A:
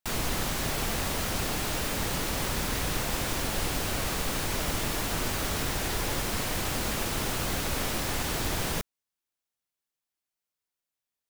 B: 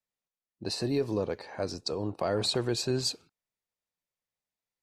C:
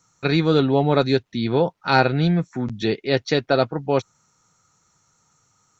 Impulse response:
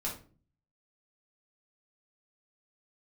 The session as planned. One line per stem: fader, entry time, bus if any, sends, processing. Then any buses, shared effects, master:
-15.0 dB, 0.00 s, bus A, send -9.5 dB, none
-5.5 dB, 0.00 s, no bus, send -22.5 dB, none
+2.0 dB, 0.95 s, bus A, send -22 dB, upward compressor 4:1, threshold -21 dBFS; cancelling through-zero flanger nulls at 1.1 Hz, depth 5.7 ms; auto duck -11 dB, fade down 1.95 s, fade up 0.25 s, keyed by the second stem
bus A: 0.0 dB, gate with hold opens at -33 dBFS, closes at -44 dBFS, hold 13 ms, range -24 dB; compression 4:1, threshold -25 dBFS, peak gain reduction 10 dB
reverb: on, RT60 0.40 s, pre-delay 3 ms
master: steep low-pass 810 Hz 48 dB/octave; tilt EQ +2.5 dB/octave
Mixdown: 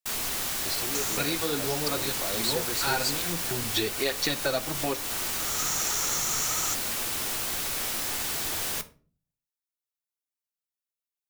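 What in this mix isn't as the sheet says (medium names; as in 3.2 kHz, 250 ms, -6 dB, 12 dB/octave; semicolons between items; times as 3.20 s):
stem A -15.0 dB -> -6.0 dB; master: missing steep low-pass 810 Hz 48 dB/octave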